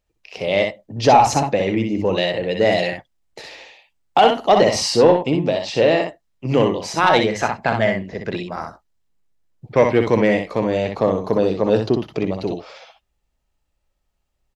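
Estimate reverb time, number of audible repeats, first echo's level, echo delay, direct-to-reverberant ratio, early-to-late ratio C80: none, 1, -4.5 dB, 62 ms, none, none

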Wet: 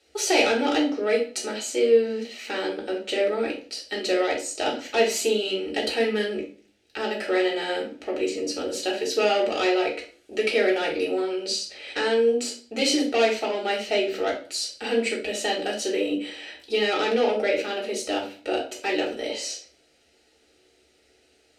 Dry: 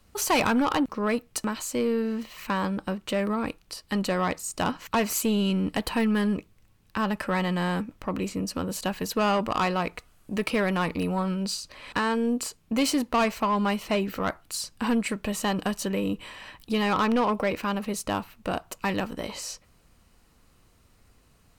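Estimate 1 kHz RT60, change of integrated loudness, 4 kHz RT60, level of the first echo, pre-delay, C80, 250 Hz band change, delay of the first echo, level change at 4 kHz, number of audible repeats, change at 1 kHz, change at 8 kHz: 0.45 s, +2.5 dB, 0.35 s, none, 3 ms, 14.0 dB, -3.0 dB, none, +6.0 dB, none, -2.0 dB, +2.0 dB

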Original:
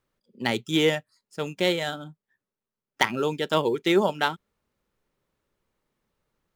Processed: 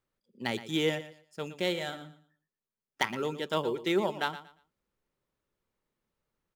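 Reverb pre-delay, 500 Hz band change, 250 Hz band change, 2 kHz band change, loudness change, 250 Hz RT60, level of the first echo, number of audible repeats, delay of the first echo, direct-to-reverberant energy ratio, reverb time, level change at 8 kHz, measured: none, -7.0 dB, -6.5 dB, -7.0 dB, -7.0 dB, none, -14.0 dB, 2, 0.117 s, none, none, -7.0 dB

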